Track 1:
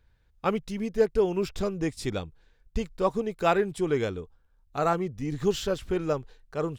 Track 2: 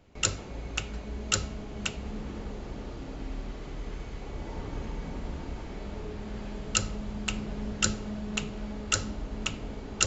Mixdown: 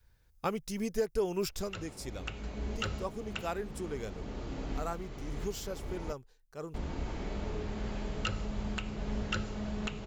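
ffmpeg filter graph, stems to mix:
-filter_complex "[0:a]aexciter=amount=2.1:drive=7.5:freq=4.9k,volume=-1.5dB,afade=t=out:st=1.44:d=0.29:silence=0.281838,asplit=2[a][b];[1:a]acrossover=split=3500[c][d];[d]acompressor=threshold=-48dB:ratio=4:attack=1:release=60[e];[c][e]amix=inputs=2:normalize=0,adelay=1500,volume=1.5dB,asplit=3[f][g][h];[f]atrim=end=6.13,asetpts=PTS-STARTPTS,afade=t=out:st=6.126:d=0.004:c=hsin[i];[g]atrim=start=6.13:end=6.74,asetpts=PTS-STARTPTS,volume=0[j];[h]atrim=start=6.74,asetpts=PTS-STARTPTS,afade=t=in:d=0.004:c=hsin[k];[i][j][k]concat=n=3:v=0:a=1[l];[b]apad=whole_len=510105[m];[l][m]sidechaincompress=threshold=-40dB:ratio=8:attack=38:release=1060[n];[a][n]amix=inputs=2:normalize=0,adynamicequalizer=threshold=0.00891:dfrequency=250:dqfactor=1.1:tfrequency=250:tqfactor=1.1:attack=5:release=100:ratio=0.375:range=2:mode=cutabove:tftype=bell,alimiter=limit=-20.5dB:level=0:latency=1:release=339"

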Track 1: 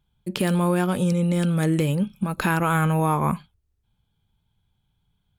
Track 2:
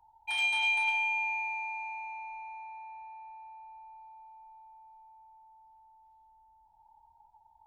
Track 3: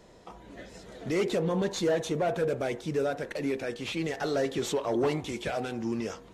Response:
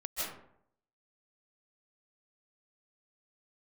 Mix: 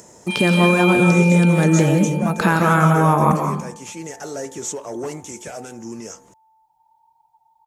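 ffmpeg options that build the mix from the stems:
-filter_complex "[0:a]equalizer=f=2.8k:t=o:w=0.77:g=-4.5,volume=2.5dB,asplit=2[a][b];[b]volume=-3.5dB[c];[1:a]highshelf=f=3.7k:g=9,aecho=1:1:6.6:0.76,volume=-2.5dB,asplit=2[d][e];[e]volume=-10.5dB[f];[2:a]highshelf=f=5.1k:t=q:w=3:g=9.5,acompressor=mode=upward:threshold=-36dB:ratio=2.5,volume=-1.5dB[g];[3:a]atrim=start_sample=2205[h];[c][f]amix=inputs=2:normalize=0[i];[i][h]afir=irnorm=-1:irlink=0[j];[a][d][g][j]amix=inputs=4:normalize=0,highpass=90,acrossover=split=9000[k][l];[l]acompressor=threshold=-45dB:ratio=4:attack=1:release=60[m];[k][m]amix=inputs=2:normalize=0"

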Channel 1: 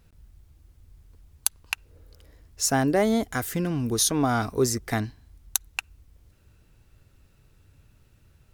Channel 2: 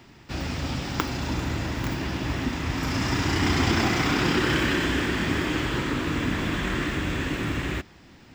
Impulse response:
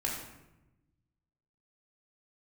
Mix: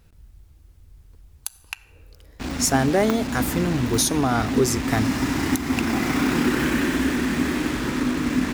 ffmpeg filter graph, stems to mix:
-filter_complex "[0:a]volume=2.5dB,asplit=2[a][b];[b]volume=-20.5dB[c];[1:a]equalizer=f=100:t=o:w=0.33:g=-11,equalizer=f=250:t=o:w=0.33:g=11,equalizer=f=3.15k:t=o:w=0.33:g=-6,equalizer=f=5k:t=o:w=0.33:g=-5,acrusher=bits=4:mix=0:aa=0.5,adelay=2100,volume=-0.5dB[d];[2:a]atrim=start_sample=2205[e];[c][e]afir=irnorm=-1:irlink=0[f];[a][d][f]amix=inputs=3:normalize=0,alimiter=limit=-9dB:level=0:latency=1:release=313"

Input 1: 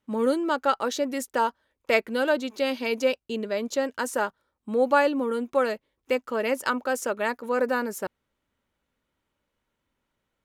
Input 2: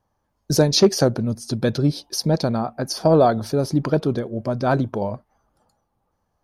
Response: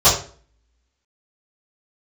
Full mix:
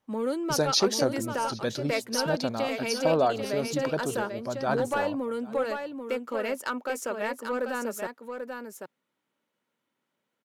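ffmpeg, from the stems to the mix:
-filter_complex "[0:a]highpass=f=150:w=0.5412,highpass=f=150:w=1.3066,acompressor=threshold=-27dB:ratio=1.5,asoftclip=type=tanh:threshold=-17dB,volume=-2dB,asplit=2[a][b];[b]volume=-6.5dB[c];[1:a]lowshelf=f=360:g=-11,volume=-5dB,asplit=2[d][e];[e]volume=-22.5dB[f];[c][f]amix=inputs=2:normalize=0,aecho=0:1:789:1[g];[a][d][g]amix=inputs=3:normalize=0"

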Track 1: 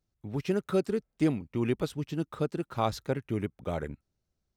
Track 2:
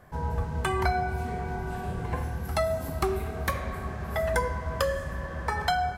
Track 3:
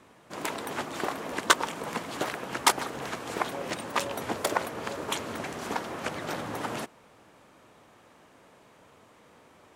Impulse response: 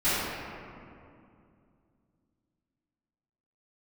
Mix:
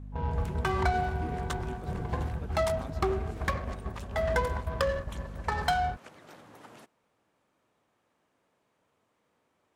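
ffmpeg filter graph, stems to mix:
-filter_complex "[0:a]volume=-17.5dB[a];[1:a]agate=range=-10dB:threshold=-32dB:ratio=16:detection=peak,adynamicsmooth=sensitivity=4.5:basefreq=960,aeval=exprs='val(0)+0.01*(sin(2*PI*50*n/s)+sin(2*PI*2*50*n/s)/2+sin(2*PI*3*50*n/s)/3+sin(2*PI*4*50*n/s)/4+sin(2*PI*5*50*n/s)/5)':c=same,volume=-1dB[b];[2:a]volume=-17.5dB[c];[a][b][c]amix=inputs=3:normalize=0"

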